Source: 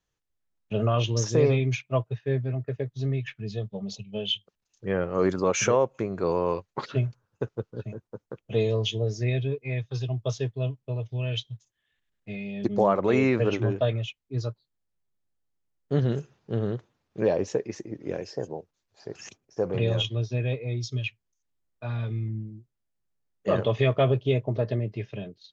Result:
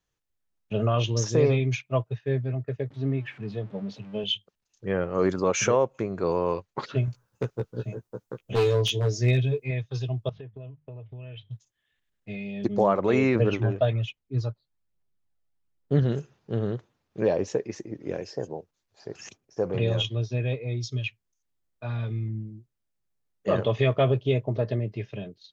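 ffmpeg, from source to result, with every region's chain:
-filter_complex "[0:a]asettb=1/sr,asplit=3[a][b][c];[a]atrim=end=2.904[d];[b]atrim=start=2.9:end=4.24,asetpts=PTS-STARTPTS,afade=t=in:d=0.004:c=qsin,afade=t=out:st=1.336:d=0.004:c=qsin,aeval=exprs='val(0)+0.5*0.00668*sgn(val(0))':c=same,highpass=110,lowpass=2.6k,equalizer=f=280:t=o:w=0.21:g=8[e];[c]atrim=start=4.236[f];[d][e]acrossfade=d=0.004:c1=hsin:c2=qsin[g];[g][f]acrossfade=d=0.004:c1=qsin:c2=hsin,asettb=1/sr,asplit=3[h][i][j];[h]atrim=end=7.064[k];[i]atrim=start=7.06:end=9.71,asetpts=PTS-STARTPTS,afade=t=in:d=0.004:c=qsin,afade=t=out:st=2.646:d=0.004:c=qsin,highshelf=f=6.4k:g=10.5,aeval=exprs='0.126*(abs(mod(val(0)/0.126+3,4)-2)-1)':c=same,asplit=2[l][m];[m]adelay=16,volume=-2.5dB[n];[l][n]amix=inputs=2:normalize=0,atrim=end_sample=116865[o];[j]atrim=start=9.706[p];[k][o]acrossfade=d=0.004:c1=hsin:c2=qsin[q];[q][p]acrossfade=d=0.004:c1=qsin:c2=hsin,asettb=1/sr,asplit=3[r][s][t];[r]atrim=end=10.294[u];[s]atrim=start=10.29:end=11.51,asetpts=PTS-STARTPTS,afade=t=in:d=0.004:c=qsin,afade=t=out:st=1.216:d=0.004:c=qsin,lowpass=f=2.7k:w=0.5412,lowpass=f=2.7k:w=1.3066,bandreject=f=50:t=h:w=6,bandreject=f=100:t=h:w=6,bandreject=f=150:t=h:w=6,bandreject=f=200:t=h:w=6,acompressor=threshold=-37dB:ratio=12:attack=3.2:release=140:knee=1:detection=peak[v];[t]atrim=start=11.506[w];[u][v]acrossfade=d=0.004:c1=hsin:c2=qsin[x];[x][w]acrossfade=d=0.004:c1=qsin:c2=hsin,asettb=1/sr,asplit=3[y][z][aa];[y]atrim=end=13.354[ab];[z]atrim=start=13.35:end=16.03,asetpts=PTS-STARTPTS,afade=t=in:d=0.004:c=qsin,afade=t=out:st=2.676:d=0.004:c=qsin,highshelf=f=5.3k:g=-8.5,aphaser=in_gain=1:out_gain=1:delay=1.7:decay=0.37:speed=1.2:type=triangular[ac];[aa]atrim=start=16.026[ad];[ab][ac]acrossfade=d=0.004:c1=hsin:c2=qsin[ae];[ae][ad]acrossfade=d=0.004:c1=qsin:c2=hsin"

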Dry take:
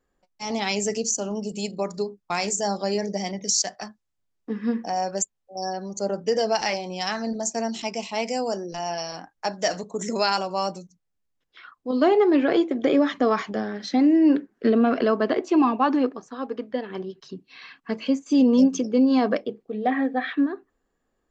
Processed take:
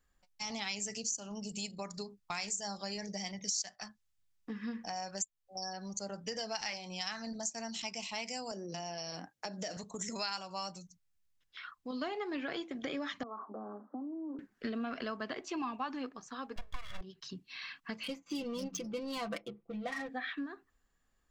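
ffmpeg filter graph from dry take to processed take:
-filter_complex "[0:a]asettb=1/sr,asplit=3[a][b][c];[a]atrim=end=8.514[d];[b]atrim=start=8.51:end=9.77,asetpts=PTS-STARTPTS,afade=t=in:d=0.004:c=qsin,afade=t=out:st=1.256:d=0.004:c=qsin,highpass=160,lowshelf=f=700:t=q:w=1.5:g=9,acompressor=threshold=-29dB:ratio=2:attack=3.2:release=140:knee=1:detection=peak[e];[c]atrim=start=9.766[f];[d][e]acrossfade=d=0.004:c1=hsin:c2=qsin[g];[g][f]acrossfade=d=0.004:c1=qsin:c2=hsin,asettb=1/sr,asplit=3[h][i][j];[h]atrim=end=13.234[k];[i]atrim=start=13.23:end=14.39,asetpts=PTS-STARTPTS,afade=t=in:d=0.004:c=qsin,afade=t=out:st=1.156:d=0.004:c=qsin,acompressor=threshold=-26dB:ratio=6:attack=3.2:release=140:knee=1:detection=peak,asuperpass=centerf=530:order=20:qfactor=0.51[l];[j]atrim=start=14.386[m];[k][l]acrossfade=d=0.004:c1=hsin:c2=qsin[n];[n][m]acrossfade=d=0.004:c1=qsin:c2=hsin,asettb=1/sr,asplit=3[o][p][q];[o]atrim=end=16.564[r];[p]atrim=start=16.56:end=17.01,asetpts=PTS-STARTPTS,afade=t=in:d=0.004:c=qsin,afade=t=out:st=0.446:d=0.004:c=qsin,equalizer=f=1.6k:t=o:w=0.2:g=14.5,aeval=exprs='abs(val(0))':c=same,aecho=1:1:1.8:0.62,atrim=end_sample=19845[s];[q]atrim=start=17.006[t];[r][s]acrossfade=d=0.004:c1=hsin:c2=qsin[u];[u][t]acrossfade=d=0.004:c1=qsin:c2=hsin,asettb=1/sr,asplit=3[v][w][x];[v]atrim=end=18.034[y];[w]atrim=start=18.03:end=20.09,asetpts=PTS-STARTPTS,afade=t=in:d=0.004:c=qsin,afade=t=out:st=2.056:d=0.004:c=qsin,adynamicsmooth=sensitivity=7:basefreq=1.6k,bandreject=f=1.7k:w=9.2,aecho=1:1:5.9:0.83,atrim=end_sample=90846[z];[x]atrim=start=20.086[aa];[y][z]acrossfade=d=0.004:c1=hsin:c2=qsin[ab];[ab][aa]acrossfade=d=0.004:c1=qsin:c2=hsin,equalizer=f=410:t=o:w=2.3:g=-14.5,acompressor=threshold=-42dB:ratio=2.5,volume=2dB"

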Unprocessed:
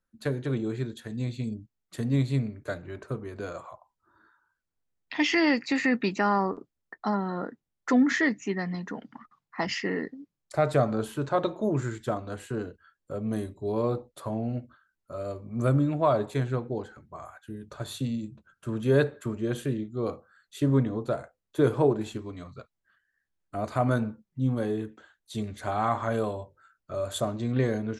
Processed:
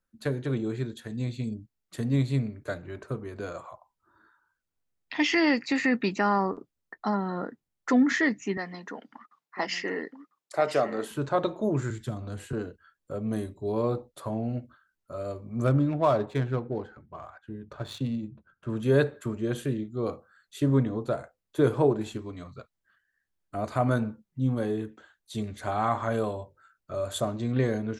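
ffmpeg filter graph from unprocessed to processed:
-filter_complex "[0:a]asettb=1/sr,asplit=3[a][b][c];[a]atrim=end=8.574[d];[b]atrim=start=8.57:end=11.11,asetpts=PTS-STARTPTS,afade=t=in:d=0.004:c=qsin,afade=t=out:st=2.536:d=0.004:c=qsin,highpass=320,aecho=1:1:998:0.316,atrim=end_sample=112014[e];[c]atrim=start=11.106[f];[d][e]acrossfade=d=0.004:c1=hsin:c2=qsin[g];[g][f]acrossfade=d=0.004:c1=qsin:c2=hsin,asettb=1/sr,asplit=3[h][i][j];[h]atrim=end=11.904[k];[i]atrim=start=11.9:end=12.53,asetpts=PTS-STARTPTS,afade=t=in:d=0.004:c=qsin,afade=t=out:st=0.626:d=0.004:c=qsin,equalizer=f=91:w=0.58:g=4.5,acrossover=split=250|3000[l][m][n];[m]acompressor=threshold=-41dB:ratio=4:attack=3.2:release=140:knee=2.83:detection=peak[o];[l][o][n]amix=inputs=3:normalize=0[p];[j]atrim=start=12.526[q];[k][p]acrossfade=d=0.004:c1=hsin:c2=qsin[r];[r][q]acrossfade=d=0.004:c1=qsin:c2=hsin,asettb=1/sr,asplit=3[s][t][u];[s]atrim=end=15.644[v];[t]atrim=start=15.64:end=18.7,asetpts=PTS-STARTPTS,afade=t=in:d=0.004:c=qsin,afade=t=out:st=3.056:d=0.004:c=qsin,highshelf=f=4.2k:g=4.5,adynamicsmooth=sensitivity=8:basefreq=2.2k[w];[u]atrim=start=18.696[x];[v][w]acrossfade=d=0.004:c1=hsin:c2=qsin[y];[y][x]acrossfade=d=0.004:c1=qsin:c2=hsin"

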